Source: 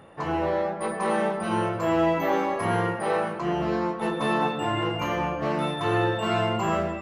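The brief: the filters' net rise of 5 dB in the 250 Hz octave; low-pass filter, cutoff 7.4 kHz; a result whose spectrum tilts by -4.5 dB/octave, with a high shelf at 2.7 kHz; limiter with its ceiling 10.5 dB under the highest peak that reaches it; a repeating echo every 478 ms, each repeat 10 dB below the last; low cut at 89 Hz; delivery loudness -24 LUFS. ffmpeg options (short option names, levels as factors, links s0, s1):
-af "highpass=89,lowpass=7400,equalizer=f=250:t=o:g=7.5,highshelf=f=2700:g=7,alimiter=limit=0.1:level=0:latency=1,aecho=1:1:478|956|1434|1912:0.316|0.101|0.0324|0.0104,volume=1.58"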